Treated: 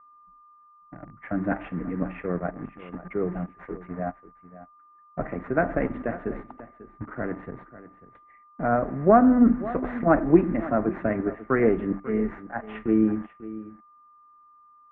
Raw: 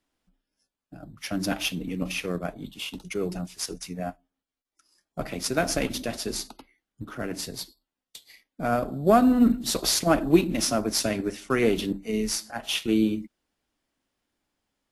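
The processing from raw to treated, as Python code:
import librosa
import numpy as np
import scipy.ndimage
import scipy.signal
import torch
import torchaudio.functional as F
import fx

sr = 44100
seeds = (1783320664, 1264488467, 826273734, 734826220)

p1 = x + 10.0 ** (-49.0 / 20.0) * np.sin(2.0 * np.pi * 1200.0 * np.arange(len(x)) / sr)
p2 = fx.quant_dither(p1, sr, seeds[0], bits=6, dither='none')
p3 = p1 + (p2 * librosa.db_to_amplitude(-5.0))
p4 = scipy.signal.sosfilt(scipy.signal.ellip(4, 1.0, 60, 1900.0, 'lowpass', fs=sr, output='sos'), p3)
p5 = p4 + 10.0 ** (-16.0 / 20.0) * np.pad(p4, (int(543 * sr / 1000.0), 0))[:len(p4)]
y = p5 * librosa.db_to_amplitude(-1.5)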